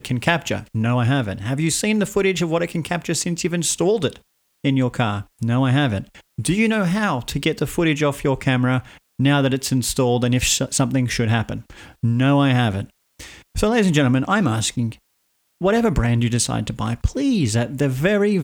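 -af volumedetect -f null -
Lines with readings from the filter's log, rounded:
mean_volume: -20.0 dB
max_volume: -2.4 dB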